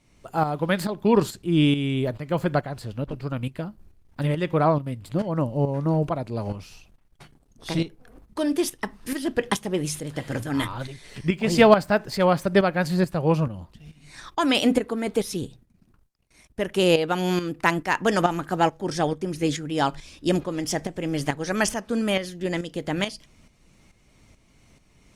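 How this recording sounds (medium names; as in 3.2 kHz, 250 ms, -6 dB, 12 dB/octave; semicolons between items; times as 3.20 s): tremolo saw up 2.3 Hz, depth 65%; Opus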